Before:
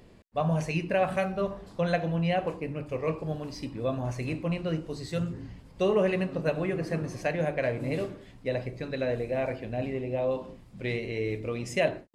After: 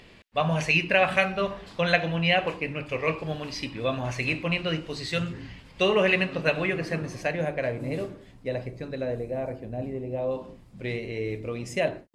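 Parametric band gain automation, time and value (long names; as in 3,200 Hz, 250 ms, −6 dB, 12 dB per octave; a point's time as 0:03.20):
parametric band 2,700 Hz 2.2 octaves
0:06.61 +14 dB
0:06.99 +7 dB
0:07.79 −1.5 dB
0:08.67 −1.5 dB
0:09.46 −11 dB
0:09.99 −11 dB
0:10.40 −0.5 dB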